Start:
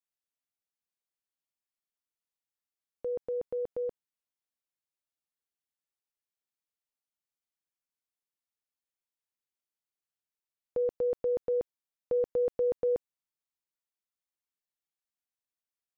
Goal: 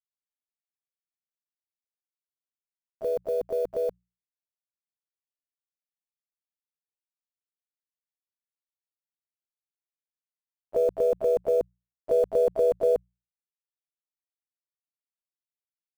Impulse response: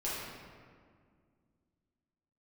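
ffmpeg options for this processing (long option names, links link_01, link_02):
-filter_complex "[0:a]acrusher=bits=8:mix=0:aa=0.000001,asplit=4[link_01][link_02][link_03][link_04];[link_02]asetrate=37084,aresample=44100,atempo=1.18921,volume=-13dB[link_05];[link_03]asetrate=52444,aresample=44100,atempo=0.840896,volume=-16dB[link_06];[link_04]asetrate=58866,aresample=44100,atempo=0.749154,volume=-8dB[link_07];[link_01][link_05][link_06][link_07]amix=inputs=4:normalize=0,bandreject=frequency=60:width_type=h:width=6,bandreject=frequency=120:width_type=h:width=6,bandreject=frequency=180:width_type=h:width=6,volume=5dB"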